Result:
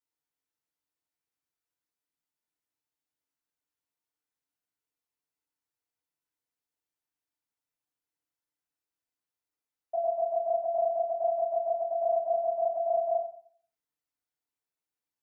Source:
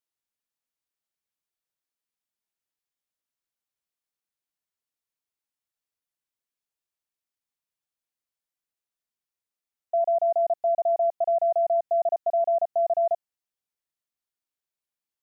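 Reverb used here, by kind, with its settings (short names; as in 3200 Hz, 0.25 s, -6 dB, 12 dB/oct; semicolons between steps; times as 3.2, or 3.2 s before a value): FDN reverb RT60 0.54 s, low-frequency decay 1×, high-frequency decay 0.45×, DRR -7.5 dB; gain -9 dB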